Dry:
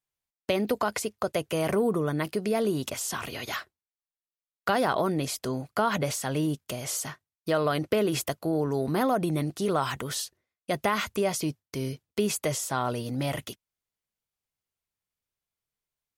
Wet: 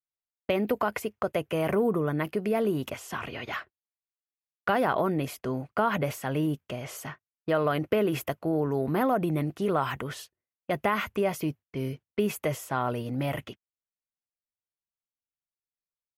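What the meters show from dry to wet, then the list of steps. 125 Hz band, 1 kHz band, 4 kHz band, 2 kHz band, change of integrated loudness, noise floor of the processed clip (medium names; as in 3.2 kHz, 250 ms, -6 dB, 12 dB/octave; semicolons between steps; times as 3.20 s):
0.0 dB, 0.0 dB, -6.0 dB, 0.0 dB, -0.5 dB, under -85 dBFS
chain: level-controlled noise filter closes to 1.8 kHz, open at -26.5 dBFS; high-order bell 6 kHz -11.5 dB; gate -44 dBFS, range -14 dB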